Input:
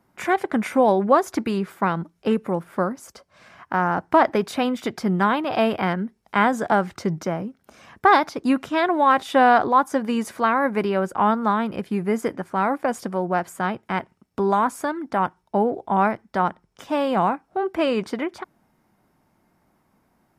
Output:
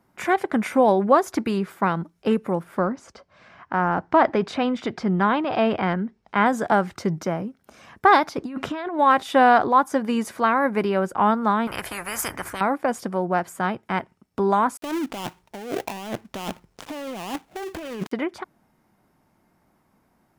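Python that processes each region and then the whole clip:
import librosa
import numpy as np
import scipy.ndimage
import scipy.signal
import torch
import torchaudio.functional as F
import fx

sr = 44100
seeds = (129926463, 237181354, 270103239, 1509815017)

y = fx.chain(x, sr, fx.transient(attack_db=-1, sustain_db=3),
    fx.air_absorb(metres=110.0), at=(2.79, 6.46))
y = fx.chain(y, sr, fx.high_shelf(hz=5700.0, db=-11.0),
    fx.over_compress(threshold_db=-29.0, ratio=-1.0), at=(8.38, 8.99))
y = fx.chain(y, sr, fx.peak_eq(hz=3900.0, db=-14.0, octaves=2.1),
    fx.spectral_comp(ratio=10.0), at=(11.67, 12.61))
y = fx.chain(y, sr, fx.dead_time(dead_ms=0.27),
    fx.over_compress(threshold_db=-31.0, ratio=-1.0), at=(14.77, 18.12))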